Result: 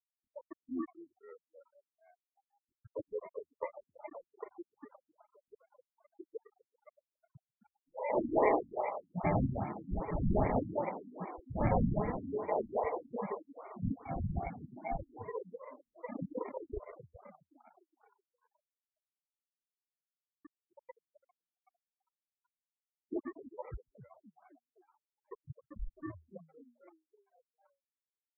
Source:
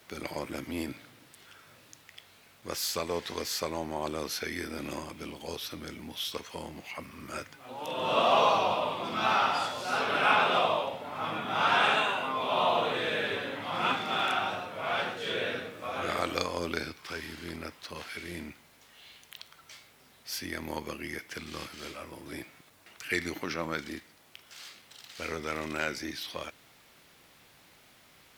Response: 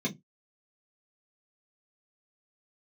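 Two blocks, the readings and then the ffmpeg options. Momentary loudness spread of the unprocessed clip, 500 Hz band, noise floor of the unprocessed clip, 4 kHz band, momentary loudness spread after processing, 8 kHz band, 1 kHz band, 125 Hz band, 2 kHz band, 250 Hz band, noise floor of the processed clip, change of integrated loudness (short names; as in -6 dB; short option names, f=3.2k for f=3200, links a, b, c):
19 LU, -5.0 dB, -59 dBFS, under -40 dB, 21 LU, under -35 dB, -11.0 dB, +4.5 dB, -19.0 dB, -1.5 dB, under -85 dBFS, -6.0 dB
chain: -filter_complex "[0:a]afftfilt=real='re*gte(hypot(re,im),0.141)':imag='im*gte(hypot(re,im),0.141)':win_size=1024:overlap=0.75,lowshelf=f=140:g=9,acrossover=split=4600[a][b];[b]adelay=140[c];[a][c]amix=inputs=2:normalize=0,asplit=2[d][e];[e]volume=27.5dB,asoftclip=hard,volume=-27.5dB,volume=-6dB[f];[d][f]amix=inputs=2:normalize=0,acrusher=samples=30:mix=1:aa=0.000001,asplit=2[g][h];[h]asplit=7[i][j][k][l][m][n][o];[i]adelay=259,afreqshift=79,volume=-12dB[p];[j]adelay=518,afreqshift=158,volume=-16.3dB[q];[k]adelay=777,afreqshift=237,volume=-20.6dB[r];[l]adelay=1036,afreqshift=316,volume=-24.9dB[s];[m]adelay=1295,afreqshift=395,volume=-29.2dB[t];[n]adelay=1554,afreqshift=474,volume=-33.5dB[u];[o]adelay=1813,afreqshift=553,volume=-37.8dB[v];[p][q][r][s][t][u][v]amix=inputs=7:normalize=0[w];[g][w]amix=inputs=2:normalize=0,afftfilt=real='re*lt(b*sr/1024,290*pow(2400/290,0.5+0.5*sin(2*PI*2.5*pts/sr)))':imag='im*lt(b*sr/1024,290*pow(2400/290,0.5+0.5*sin(2*PI*2.5*pts/sr)))':win_size=1024:overlap=0.75,volume=-4dB"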